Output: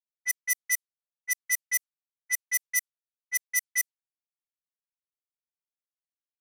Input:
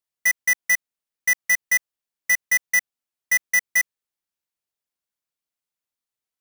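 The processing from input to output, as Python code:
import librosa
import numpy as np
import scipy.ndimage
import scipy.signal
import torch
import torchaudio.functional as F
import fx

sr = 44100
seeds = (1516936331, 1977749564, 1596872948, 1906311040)

y = scipy.signal.lfilter([1.0, -0.97], [1.0], x)
y = fx.env_lowpass(y, sr, base_hz=400.0, full_db=-20.5)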